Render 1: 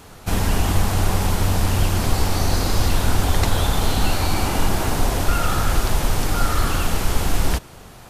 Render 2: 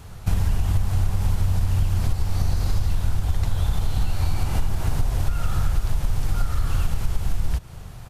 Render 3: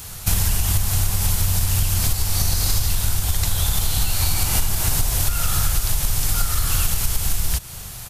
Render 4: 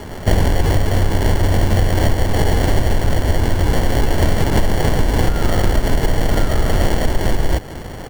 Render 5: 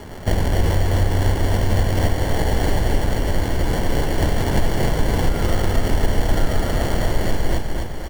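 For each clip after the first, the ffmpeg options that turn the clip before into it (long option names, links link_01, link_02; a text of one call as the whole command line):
ffmpeg -i in.wav -af "firequalizer=gain_entry='entry(120,0);entry(250,-14);entry(700,-12)':delay=0.05:min_phase=1,acompressor=threshold=-24dB:ratio=6,volume=7.5dB" out.wav
ffmpeg -i in.wav -af "crystalizer=i=8:c=0" out.wav
ffmpeg -i in.wav -filter_complex "[0:a]acrossover=split=640|2000[link_01][link_02][link_03];[link_02]asoftclip=type=tanh:threshold=-37dB[link_04];[link_03]acrusher=samples=35:mix=1:aa=0.000001[link_05];[link_01][link_04][link_05]amix=inputs=3:normalize=0,volume=5dB" out.wav
ffmpeg -i in.wav -af "aecho=1:1:256|512|768|1024|1280|1536:0.631|0.303|0.145|0.0698|0.0335|0.0161,volume=-5dB" out.wav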